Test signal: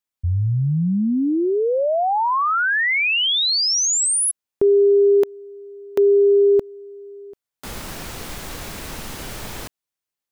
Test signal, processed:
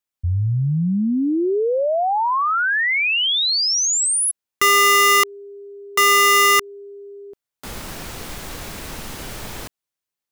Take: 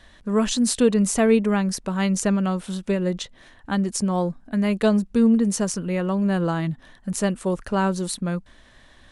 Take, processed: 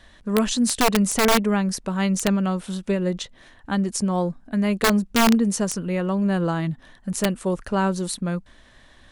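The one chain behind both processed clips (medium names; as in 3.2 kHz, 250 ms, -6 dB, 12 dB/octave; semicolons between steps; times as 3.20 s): integer overflow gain 11 dB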